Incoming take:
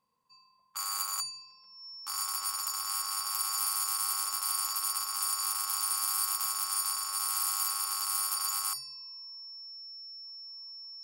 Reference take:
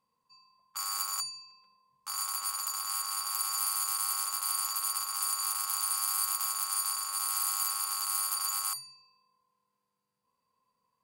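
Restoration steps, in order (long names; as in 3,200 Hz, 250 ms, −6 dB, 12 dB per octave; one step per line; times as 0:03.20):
clipped peaks rebuilt −21 dBFS
notch filter 5,400 Hz, Q 30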